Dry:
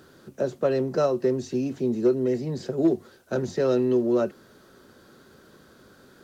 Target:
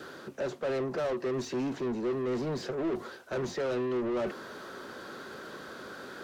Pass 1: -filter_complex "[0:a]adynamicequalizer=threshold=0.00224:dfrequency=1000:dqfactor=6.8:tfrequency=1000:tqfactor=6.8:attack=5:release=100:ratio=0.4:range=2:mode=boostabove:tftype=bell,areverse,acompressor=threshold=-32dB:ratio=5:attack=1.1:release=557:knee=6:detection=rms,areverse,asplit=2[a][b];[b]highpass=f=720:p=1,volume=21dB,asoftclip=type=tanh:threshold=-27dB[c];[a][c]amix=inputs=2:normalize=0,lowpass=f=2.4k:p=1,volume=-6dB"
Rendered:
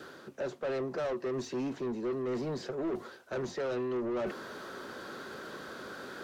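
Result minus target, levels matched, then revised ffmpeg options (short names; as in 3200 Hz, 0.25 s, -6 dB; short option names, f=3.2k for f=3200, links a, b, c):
compressor: peak gain reduction +5.5 dB
-filter_complex "[0:a]adynamicequalizer=threshold=0.00224:dfrequency=1000:dqfactor=6.8:tfrequency=1000:tqfactor=6.8:attack=5:release=100:ratio=0.4:range=2:mode=boostabove:tftype=bell,areverse,acompressor=threshold=-25dB:ratio=5:attack=1.1:release=557:knee=6:detection=rms,areverse,asplit=2[a][b];[b]highpass=f=720:p=1,volume=21dB,asoftclip=type=tanh:threshold=-27dB[c];[a][c]amix=inputs=2:normalize=0,lowpass=f=2.4k:p=1,volume=-6dB"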